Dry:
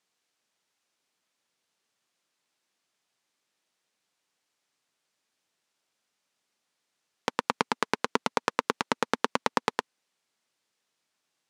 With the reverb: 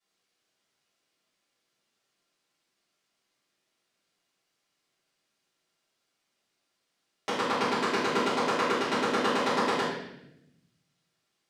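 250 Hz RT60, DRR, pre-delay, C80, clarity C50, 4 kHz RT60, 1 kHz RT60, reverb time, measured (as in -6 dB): 1.4 s, -15.0 dB, 3 ms, 3.5 dB, 0.0 dB, 0.80 s, 0.75 s, 0.80 s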